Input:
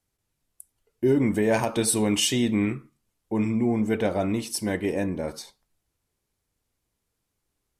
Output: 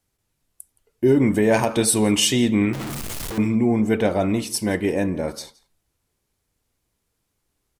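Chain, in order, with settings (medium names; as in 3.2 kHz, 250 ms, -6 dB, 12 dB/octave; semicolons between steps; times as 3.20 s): 2.73–3.38 s: one-bit comparator; echo from a far wall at 29 m, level -21 dB; trim +4.5 dB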